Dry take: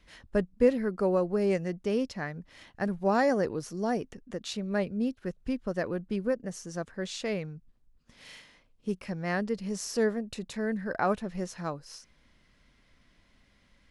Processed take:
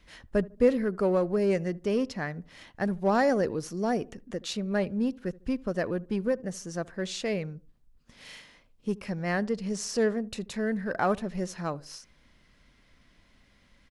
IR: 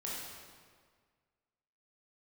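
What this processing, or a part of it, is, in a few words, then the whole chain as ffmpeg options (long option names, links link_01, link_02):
parallel distortion: -filter_complex "[0:a]asplit=2[link_01][link_02];[link_02]asoftclip=type=hard:threshold=-29dB,volume=-10dB[link_03];[link_01][link_03]amix=inputs=2:normalize=0,asettb=1/sr,asplit=3[link_04][link_05][link_06];[link_04]atrim=end=9.404[link_07];[link_05]atrim=start=9.4:end=10.25,asetpts=PTS-STARTPTS,afade=type=in:duration=0.004:curve=qsin,afade=type=out:start_time=0.846:duration=0.004:curve=qsin,lowpass=frequency=10000:width=0.5412,lowpass=frequency=10000:width=1.3066[link_08];[link_06]atrim=start=10.246[link_09];[link_07][link_08]acrossfade=duration=0.004:curve1=hsin:curve2=qsin[link_10];[link_10][link_09]acrossfade=duration=0.004:curve1=qsin:curve2=hsin,asplit=2[link_11][link_12];[link_12]adelay=75,lowpass=frequency=920:poles=1,volume=-20.5dB,asplit=2[link_13][link_14];[link_14]adelay=75,lowpass=frequency=920:poles=1,volume=0.4,asplit=2[link_15][link_16];[link_16]adelay=75,lowpass=frequency=920:poles=1,volume=0.4[link_17];[link_11][link_13][link_15][link_17]amix=inputs=4:normalize=0"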